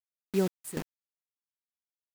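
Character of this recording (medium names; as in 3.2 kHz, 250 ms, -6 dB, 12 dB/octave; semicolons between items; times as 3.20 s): a quantiser's noise floor 6-bit, dither none; random-step tremolo 3.9 Hz, depth 85%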